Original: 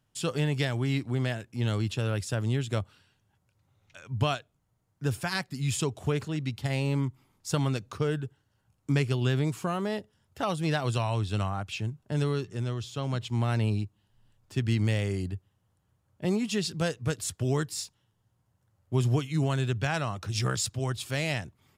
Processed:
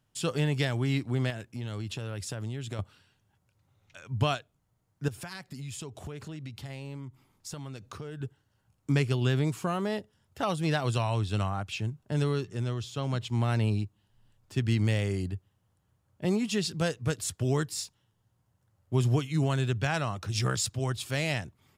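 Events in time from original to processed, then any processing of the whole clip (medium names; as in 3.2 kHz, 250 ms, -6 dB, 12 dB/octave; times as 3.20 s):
1.30–2.79 s: compression 5:1, threshold -32 dBFS
5.08–8.21 s: compression, threshold -37 dBFS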